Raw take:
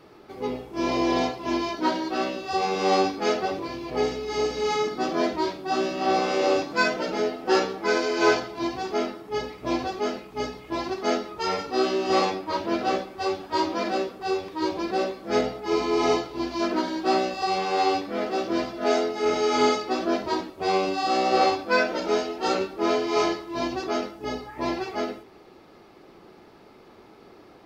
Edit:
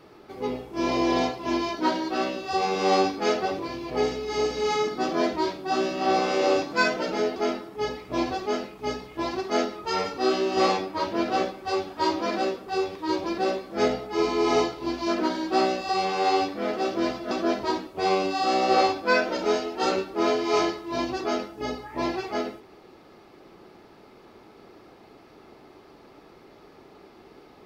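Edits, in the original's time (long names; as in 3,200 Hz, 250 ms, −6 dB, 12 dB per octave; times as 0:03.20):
0:07.36–0:08.89: remove
0:18.84–0:19.94: remove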